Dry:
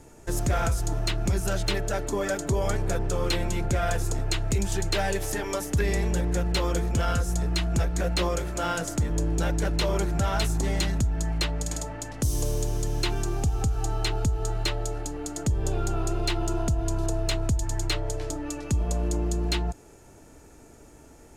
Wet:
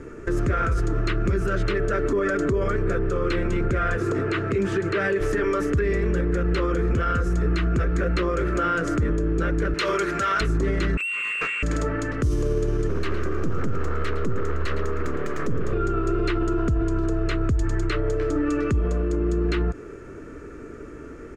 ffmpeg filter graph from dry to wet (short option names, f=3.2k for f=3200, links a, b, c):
-filter_complex "[0:a]asettb=1/sr,asplit=3[a][b][c];[a]atrim=end=3.974[d];[b]atrim=start=3.97:end=5.21,asetpts=PTS-STARTPTS,afade=t=in:d=0.004:c=qsin,afade=t=out:st=1.236:d=0.004:c=qsin,highpass=140,acrossover=split=3300[e][f];[f]acompressor=threshold=-37dB:ratio=4:attack=1:release=60[g];[e][g]amix=inputs=2:normalize=0[h];[c]atrim=start=5.206[i];[d][h]acrossfade=d=0.004:c1=hsin:c2=qsin[j];[j][i]acrossfade=d=0.004:c1=qsin:c2=hsin,asettb=1/sr,asplit=3[k][l][m];[k]atrim=end=9.744[n];[l]atrim=start=9.74:end=10.41,asetpts=PTS-STARTPTS,afade=t=in:d=0.004:c=qsin,afade=t=out:st=0.666:d=0.004:c=qsin,highpass=f=680:p=1,highshelf=f=2k:g=10[o];[m]atrim=start=10.406[p];[n][o]acrossfade=d=0.004:c1=hsin:c2=qsin[q];[q][p]acrossfade=d=0.004:c1=qsin:c2=hsin,asettb=1/sr,asplit=3[r][s][t];[r]atrim=end=10.974[u];[s]atrim=start=10.97:end=11.63,asetpts=PTS-STARTPTS,afade=t=in:d=0.004:c=qsin,afade=t=out:st=0.656:d=0.004:c=qsin,highpass=59,lowpass=f=2.4k:t=q:w=0.5098,lowpass=f=2.4k:t=q:w=0.6013,lowpass=f=2.4k:t=q:w=0.9,lowpass=f=2.4k:t=q:w=2.563,afreqshift=-2800,asoftclip=type=hard:threshold=-32dB[v];[t]atrim=start=11.626[w];[u][v]acrossfade=d=0.004:c1=hsin:c2=qsin[x];[x][w]acrossfade=d=0.004:c1=qsin:c2=hsin,asettb=1/sr,asplit=3[y][z][aa];[y]atrim=end=12.894[ab];[z]atrim=start=12.89:end=15.73,asetpts=PTS-STARTPTS,afade=t=in:d=0.004:c=qsin,afade=t=out:st=2.836:d=0.004:c=qsin,aeval=exprs='abs(val(0))':c=same,aecho=1:1:111:0.237,atrim=end_sample=125244[ac];[aa]atrim=start=15.726[ad];[ab][ac]acrossfade=d=0.004:c1=hsin:c2=qsin[ae];[ae][ad]acrossfade=d=0.004:c1=qsin:c2=hsin,firequalizer=gain_entry='entry(150,0);entry(410,8);entry(810,-14);entry(1200,8);entry(3500,-9);entry(13000,-25)':delay=0.05:min_phase=1,alimiter=level_in=0.5dB:limit=-24dB:level=0:latency=1:release=59,volume=-0.5dB,volume=9dB"